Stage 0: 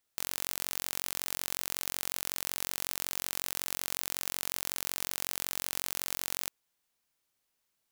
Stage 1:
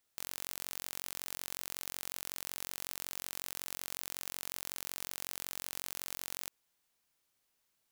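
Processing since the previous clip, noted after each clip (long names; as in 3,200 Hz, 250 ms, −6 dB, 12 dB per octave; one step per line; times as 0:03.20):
brickwall limiter −14 dBFS, peak gain reduction 7.5 dB
level +1 dB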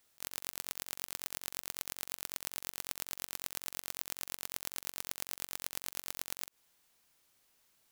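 volume swells 136 ms
level +7.5 dB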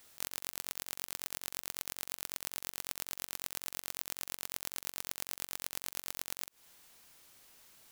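downward compressor 5 to 1, threshold −44 dBFS, peak gain reduction 11.5 dB
level +11 dB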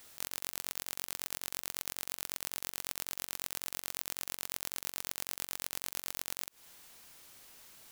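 hard clipping −14 dBFS, distortion −15 dB
level +4.5 dB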